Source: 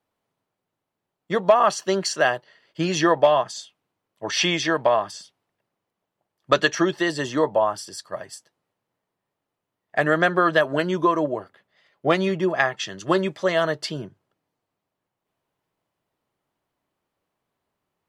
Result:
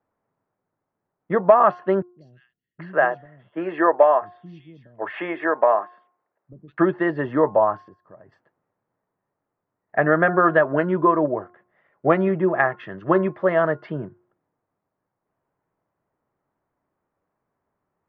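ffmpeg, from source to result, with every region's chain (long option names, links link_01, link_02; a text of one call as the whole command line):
ffmpeg -i in.wav -filter_complex "[0:a]asettb=1/sr,asplit=3[link_01][link_02][link_03];[link_01]atrim=end=2.024[link_04];[link_02]atrim=start=2.02:end=6.78,asetpts=PTS-STARTPTS,afade=type=in:duration=0.004:curve=qsin,afade=type=out:start_time=4.756:duration=0.004:curve=qsin,bass=frequency=250:gain=-12,treble=frequency=4000:gain=-11,acrossover=split=190|4800[link_05][link_06][link_07];[link_07]adelay=160[link_08];[link_06]adelay=770[link_09];[link_05][link_09][link_08]amix=inputs=3:normalize=0,atrim=end_sample=209916[link_10];[link_03]atrim=start=6.776[link_11];[link_04][link_10]acrossfade=duration=0.004:curve1=hsin:curve2=qsin[link_12];[link_12][link_11]acrossfade=duration=0.004:curve1=qsin:curve2=hsin,asettb=1/sr,asplit=3[link_13][link_14][link_15];[link_13]atrim=end=7.884[link_16];[link_14]atrim=start=7.88:end=8.32,asetpts=PTS-STARTPTS,afade=type=in:duration=0.004:curve=qsin,afade=type=out:start_time=0.436:duration=0.004:curve=qsin,acompressor=threshold=-44dB:ratio=3:attack=3.2:release=140:knee=1:detection=peak,equalizer=frequency=2700:width=0.32:gain=-11[link_17];[link_15]atrim=start=8.316[link_18];[link_16][link_17]acrossfade=duration=0.004:curve1=hsin:curve2=qsin[link_19];[link_19][link_18]acrossfade=duration=0.004:curve1=qsin:curve2=hsin,lowpass=frequency=1800:width=0.5412,lowpass=frequency=1800:width=1.3066,bandreject=frequency=356.6:width_type=h:width=4,bandreject=frequency=713.2:width_type=h:width=4,bandreject=frequency=1069.8:width_type=h:width=4,bandreject=frequency=1426.4:width_type=h:width=4,volume=2.5dB" out.wav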